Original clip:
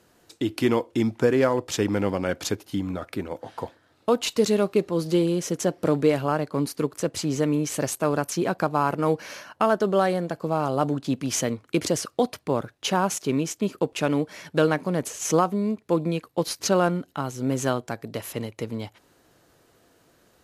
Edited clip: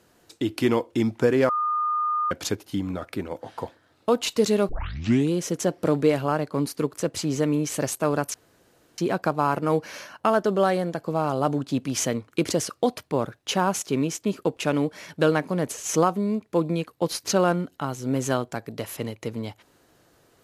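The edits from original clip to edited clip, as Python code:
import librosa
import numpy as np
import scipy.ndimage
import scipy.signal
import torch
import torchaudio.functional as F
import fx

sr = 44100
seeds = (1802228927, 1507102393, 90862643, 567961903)

y = fx.edit(x, sr, fx.bleep(start_s=1.49, length_s=0.82, hz=1220.0, db=-21.5),
    fx.tape_start(start_s=4.69, length_s=0.63),
    fx.insert_room_tone(at_s=8.34, length_s=0.64), tone=tone)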